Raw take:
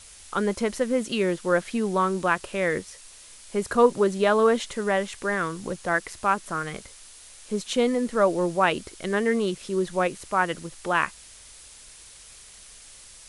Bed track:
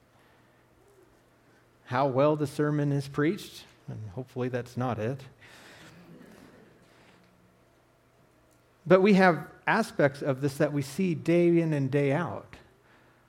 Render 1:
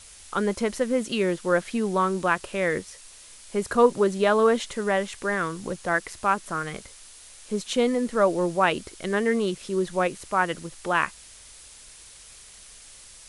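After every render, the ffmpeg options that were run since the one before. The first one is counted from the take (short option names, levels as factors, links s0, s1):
-af anull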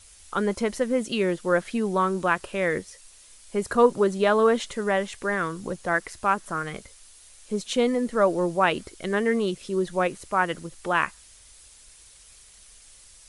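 -af "afftdn=nr=6:nf=-48"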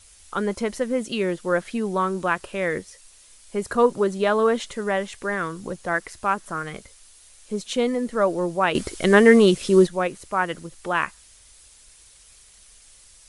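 -filter_complex "[0:a]asplit=3[s0][s1][s2];[s0]atrim=end=8.752[s3];[s1]atrim=start=8.748:end=9.872,asetpts=PTS-STARTPTS,volume=3.35[s4];[s2]atrim=start=9.868[s5];[s3][s4]acrossfade=d=0.004:c1=hsin:c2=hsin[s6];[s6][s5]acrossfade=d=0.004:c1=hsin:c2=hsin"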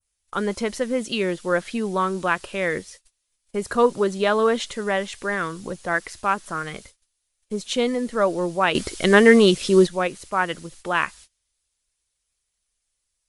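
-af "agate=range=0.0501:threshold=0.00562:ratio=16:detection=peak,adynamicequalizer=threshold=0.01:dfrequency=4000:dqfactor=0.71:tfrequency=4000:tqfactor=0.71:attack=5:release=100:ratio=0.375:range=2.5:mode=boostabove:tftype=bell"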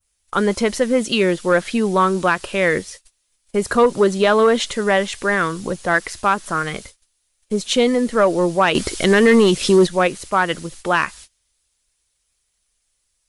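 -af "acontrast=86,alimiter=limit=0.501:level=0:latency=1:release=137"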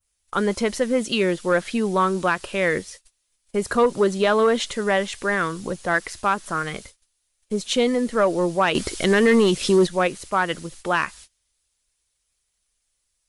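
-af "volume=0.631"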